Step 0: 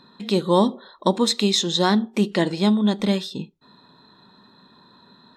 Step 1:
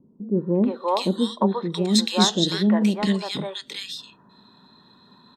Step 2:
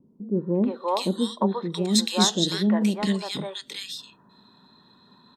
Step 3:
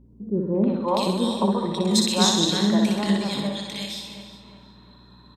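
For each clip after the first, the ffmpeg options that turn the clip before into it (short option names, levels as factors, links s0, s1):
-filter_complex "[0:a]acrossover=split=490|1700[s0][s1][s2];[s1]adelay=350[s3];[s2]adelay=680[s4];[s0][s3][s4]amix=inputs=3:normalize=0"
-af "adynamicequalizer=threshold=0.0112:dfrequency=6200:dqfactor=0.7:tfrequency=6200:tqfactor=0.7:attack=5:release=100:ratio=0.375:range=3.5:mode=boostabove:tftype=highshelf,volume=0.75"
-filter_complex "[0:a]asplit=2[s0][s1];[s1]adelay=359,lowpass=f=2500:p=1,volume=0.316,asplit=2[s2][s3];[s3]adelay=359,lowpass=f=2500:p=1,volume=0.44,asplit=2[s4][s5];[s5]adelay=359,lowpass=f=2500:p=1,volume=0.44,asplit=2[s6][s7];[s7]adelay=359,lowpass=f=2500:p=1,volume=0.44,asplit=2[s8][s9];[s9]adelay=359,lowpass=f=2500:p=1,volume=0.44[s10];[s2][s4][s6][s8][s10]amix=inputs=5:normalize=0[s11];[s0][s11]amix=inputs=2:normalize=0,aeval=exprs='val(0)+0.00282*(sin(2*PI*60*n/s)+sin(2*PI*2*60*n/s)/2+sin(2*PI*3*60*n/s)/3+sin(2*PI*4*60*n/s)/4+sin(2*PI*5*60*n/s)/5)':c=same,asplit=2[s12][s13];[s13]aecho=0:1:60|129|208.4|299.6|404.5:0.631|0.398|0.251|0.158|0.1[s14];[s12][s14]amix=inputs=2:normalize=0"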